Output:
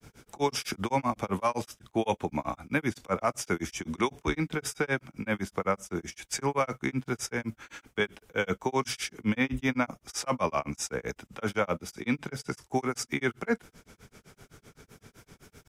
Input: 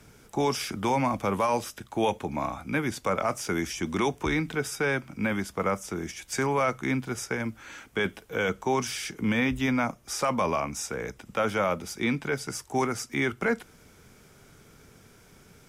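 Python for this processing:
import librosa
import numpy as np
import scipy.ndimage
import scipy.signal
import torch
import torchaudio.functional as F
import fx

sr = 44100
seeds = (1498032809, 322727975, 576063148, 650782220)

p1 = fx.level_steps(x, sr, step_db=19)
p2 = x + (p1 * librosa.db_to_amplitude(-2.0))
y = fx.granulator(p2, sr, seeds[0], grain_ms=127.0, per_s=7.8, spray_ms=14.0, spread_st=0)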